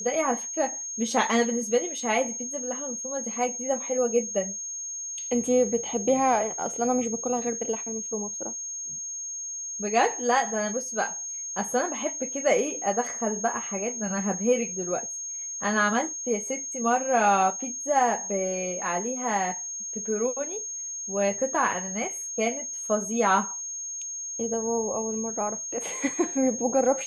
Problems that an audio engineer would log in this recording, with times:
tone 6500 Hz -32 dBFS

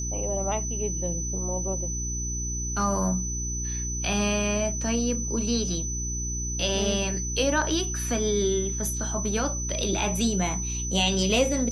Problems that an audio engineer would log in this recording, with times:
hum 60 Hz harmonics 6 -32 dBFS
tone 6000 Hz -31 dBFS

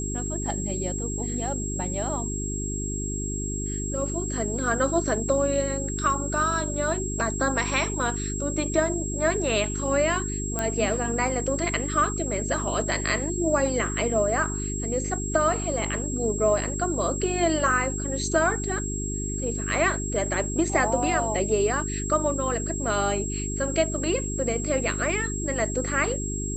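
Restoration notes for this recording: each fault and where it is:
hum 50 Hz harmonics 8 -31 dBFS
tone 7600 Hz -32 dBFS
10.59 pop -12 dBFS

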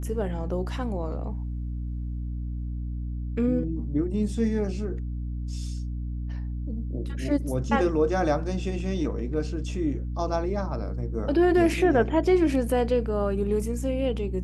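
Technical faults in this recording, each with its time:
hum 60 Hz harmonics 5 -31 dBFS

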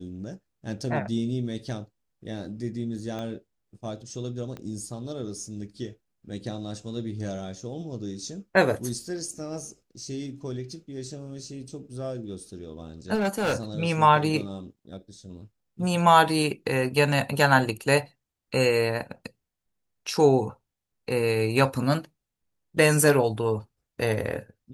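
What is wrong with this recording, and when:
3.19 pop -22 dBFS
4.57 pop -25 dBFS
13.14–13.56 clipped -21 dBFS

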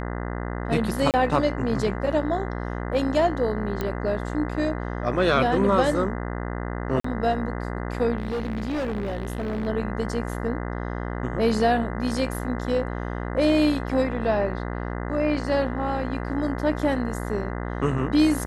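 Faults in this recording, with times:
buzz 60 Hz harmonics 34 -30 dBFS
1.11–1.14 gap 28 ms
3.81 pop -14 dBFS
7–7.04 gap 44 ms
8.18–9.68 clipped -24 dBFS

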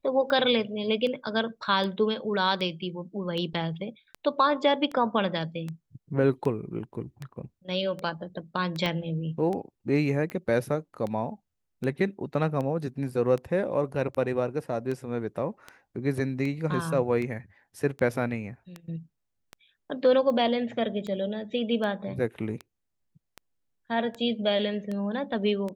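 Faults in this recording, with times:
tick 78 rpm -22 dBFS
8.86 pop -15 dBFS

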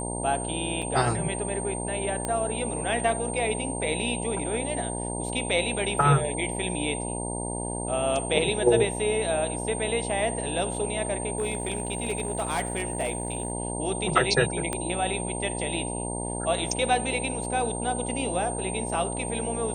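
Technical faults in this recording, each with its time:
buzz 60 Hz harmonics 16 -33 dBFS
tone 8700 Hz -34 dBFS
0.82–0.83 gap 5.4 ms
2.25 pop -15 dBFS
11.37–13.52 clipped -22 dBFS
14.73 pop -14 dBFS

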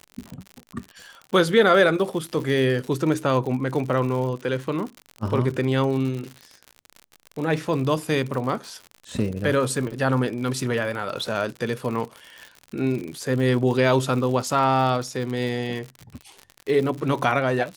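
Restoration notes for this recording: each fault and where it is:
crackle 75/s -30 dBFS

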